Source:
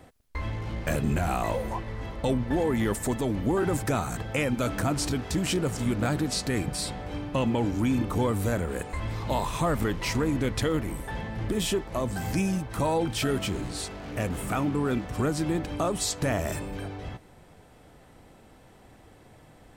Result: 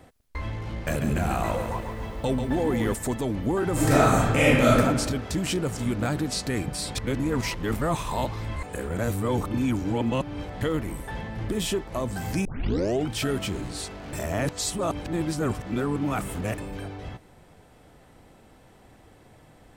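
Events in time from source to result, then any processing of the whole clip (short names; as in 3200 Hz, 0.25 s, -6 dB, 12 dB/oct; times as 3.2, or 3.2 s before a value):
0.86–2.94 lo-fi delay 0.141 s, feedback 55%, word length 9-bit, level -7 dB
3.72–4.78 reverb throw, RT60 1.3 s, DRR -9 dB
6.95–10.61 reverse
12.45 tape start 0.64 s
14.13–16.58 reverse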